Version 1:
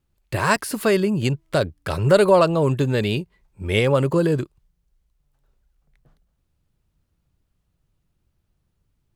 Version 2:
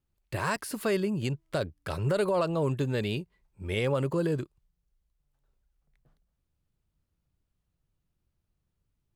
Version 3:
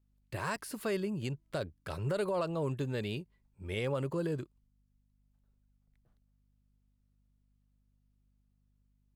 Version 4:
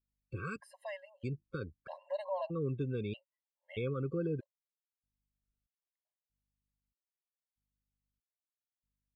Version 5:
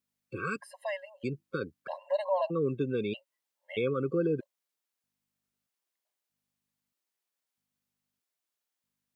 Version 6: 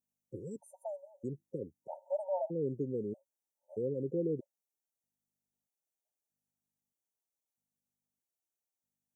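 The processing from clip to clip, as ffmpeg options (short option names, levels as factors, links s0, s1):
-af "alimiter=limit=0.316:level=0:latency=1:release=58,volume=0.376"
-af "aeval=exprs='val(0)+0.000562*(sin(2*PI*50*n/s)+sin(2*PI*2*50*n/s)/2+sin(2*PI*3*50*n/s)/3+sin(2*PI*4*50*n/s)/4+sin(2*PI*5*50*n/s)/5)':c=same,volume=0.501"
-af "afftdn=nr=17:nf=-47,aemphasis=mode=reproduction:type=50fm,afftfilt=real='re*gt(sin(2*PI*0.79*pts/sr)*(1-2*mod(floor(b*sr/1024/540),2)),0)':imag='im*gt(sin(2*PI*0.79*pts/sr)*(1-2*mod(floor(b*sr/1024/540),2)),0)':win_size=1024:overlap=0.75,volume=0.891"
-af "highpass=210,volume=2.51"
-af "afftfilt=real='re*(1-between(b*sr/4096,940,5500))':imag='im*(1-between(b*sr/4096,940,5500))':win_size=4096:overlap=0.75,volume=0.562"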